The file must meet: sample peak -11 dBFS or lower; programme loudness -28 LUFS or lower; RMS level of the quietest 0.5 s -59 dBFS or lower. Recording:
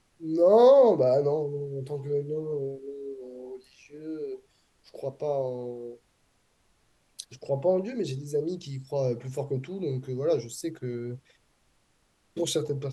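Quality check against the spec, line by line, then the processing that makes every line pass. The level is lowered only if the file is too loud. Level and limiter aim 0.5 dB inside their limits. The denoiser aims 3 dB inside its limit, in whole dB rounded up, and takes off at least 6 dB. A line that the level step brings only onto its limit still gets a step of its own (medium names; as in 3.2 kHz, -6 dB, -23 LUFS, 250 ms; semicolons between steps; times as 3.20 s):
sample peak -9.0 dBFS: fail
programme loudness -27.0 LUFS: fail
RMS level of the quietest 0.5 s -69 dBFS: pass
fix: trim -1.5 dB; peak limiter -11.5 dBFS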